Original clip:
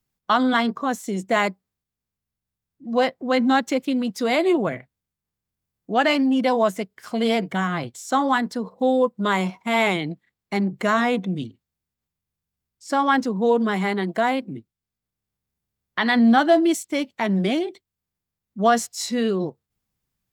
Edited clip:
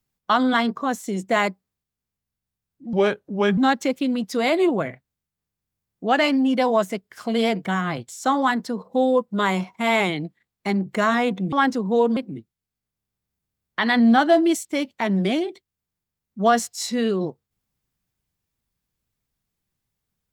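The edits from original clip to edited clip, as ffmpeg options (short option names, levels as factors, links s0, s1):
-filter_complex "[0:a]asplit=5[s0][s1][s2][s3][s4];[s0]atrim=end=2.934[s5];[s1]atrim=start=2.93:end=3.44,asetpts=PTS-STARTPTS,asetrate=34839,aresample=44100[s6];[s2]atrim=start=3.436:end=11.392[s7];[s3]atrim=start=13.028:end=13.672[s8];[s4]atrim=start=14.358[s9];[s5][s6]acrossfade=d=0.004:c1=hsin:c2=hsin[s10];[s10][s7]acrossfade=d=0.004:c1=hsin:c2=hsin[s11];[s11][s8]acrossfade=d=0.004:c1=hsin:c2=hsin[s12];[s12][s9]acrossfade=d=0.004:c1=hsin:c2=hsin"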